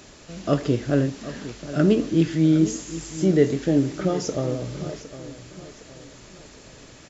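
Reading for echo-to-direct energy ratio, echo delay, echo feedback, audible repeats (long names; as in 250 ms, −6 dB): −13.5 dB, 760 ms, 42%, 3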